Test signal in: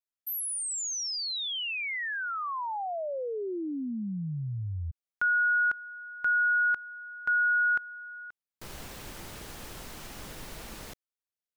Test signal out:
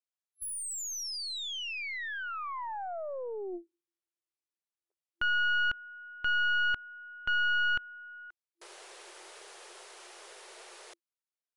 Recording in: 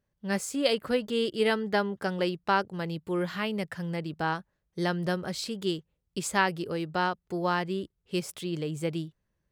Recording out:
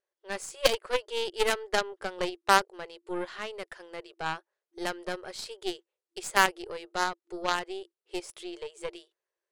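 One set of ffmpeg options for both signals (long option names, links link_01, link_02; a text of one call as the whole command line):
ffmpeg -i in.wav -filter_complex "[0:a]afftfilt=real='re*between(b*sr/4096,340,11000)':imag='im*between(b*sr/4096,340,11000)':win_size=4096:overlap=0.75,asplit=2[link_01][link_02];[link_02]acrusher=bits=2:mix=0:aa=0.5,volume=-4dB[link_03];[link_01][link_03]amix=inputs=2:normalize=0,aeval=exprs='0.562*(cos(1*acos(clip(val(0)/0.562,-1,1)))-cos(1*PI/2))+0.0251*(cos(5*acos(clip(val(0)/0.562,-1,1)))-cos(5*PI/2))+0.02*(cos(6*acos(clip(val(0)/0.562,-1,1)))-cos(6*PI/2))+0.0501*(cos(7*acos(clip(val(0)/0.562,-1,1)))-cos(7*PI/2))+0.0631*(cos(8*acos(clip(val(0)/0.562,-1,1)))-cos(8*PI/2))':channel_layout=same" out.wav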